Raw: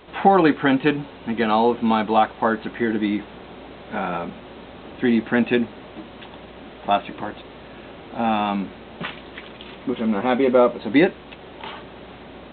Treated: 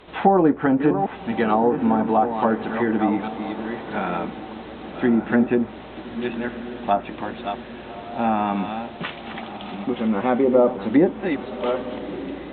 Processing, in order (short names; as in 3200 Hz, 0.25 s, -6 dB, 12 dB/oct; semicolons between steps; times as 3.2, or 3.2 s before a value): reverse delay 0.656 s, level -9 dB; treble ducked by the level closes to 840 Hz, closed at -13.5 dBFS; diffused feedback echo 1.192 s, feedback 40%, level -13 dB